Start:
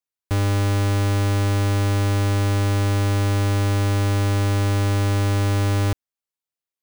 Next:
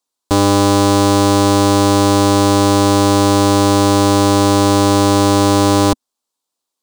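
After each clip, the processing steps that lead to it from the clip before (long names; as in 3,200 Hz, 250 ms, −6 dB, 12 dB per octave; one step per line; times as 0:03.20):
octave-band graphic EQ 125/250/500/1,000/2,000/4,000/8,000 Hz −10/+11/+4/+11/−7/+8/+8 dB
level +6 dB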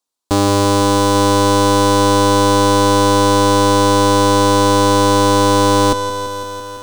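feedback echo at a low word length 168 ms, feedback 80%, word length 6 bits, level −11 dB
level −1.5 dB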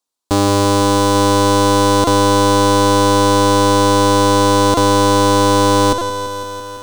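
buffer that repeats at 0:02.04/0:04.74/0:05.98, samples 128, times 10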